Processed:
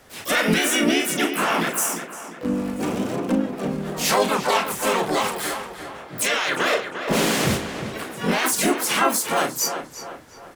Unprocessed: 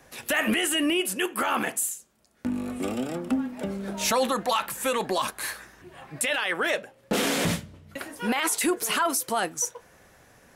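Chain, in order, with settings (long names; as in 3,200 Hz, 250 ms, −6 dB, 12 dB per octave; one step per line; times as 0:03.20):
double-tracking delay 37 ms −7 dB
pitch-shifted copies added −4 semitones −1 dB, +3 semitones −5 dB, +12 semitones −6 dB
tape delay 351 ms, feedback 48%, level −7.5 dB, low-pass 2,900 Hz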